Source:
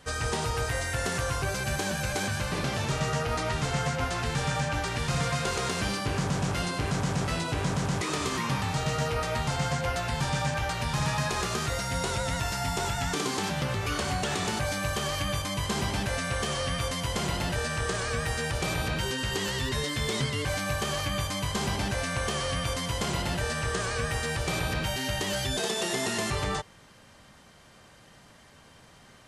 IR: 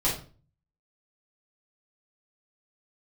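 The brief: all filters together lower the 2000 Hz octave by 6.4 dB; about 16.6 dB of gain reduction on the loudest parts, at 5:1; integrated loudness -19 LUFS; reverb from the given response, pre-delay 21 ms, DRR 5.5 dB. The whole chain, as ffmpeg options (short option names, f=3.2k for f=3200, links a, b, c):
-filter_complex "[0:a]equalizer=f=2k:t=o:g=-8.5,acompressor=threshold=-45dB:ratio=5,asplit=2[a][b];[1:a]atrim=start_sample=2205,adelay=21[c];[b][c]afir=irnorm=-1:irlink=0,volume=-16dB[d];[a][d]amix=inputs=2:normalize=0,volume=25.5dB"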